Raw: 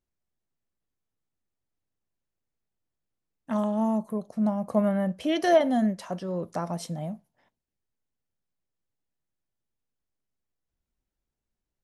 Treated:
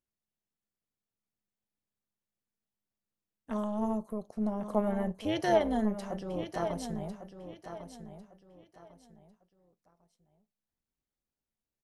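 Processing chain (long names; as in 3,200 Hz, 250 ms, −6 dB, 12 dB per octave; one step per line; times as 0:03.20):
low-shelf EQ 65 Hz −7.5 dB
amplitude modulation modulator 210 Hz, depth 50%
on a send: repeating echo 1,100 ms, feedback 28%, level −10 dB
on the sum: level −2.5 dB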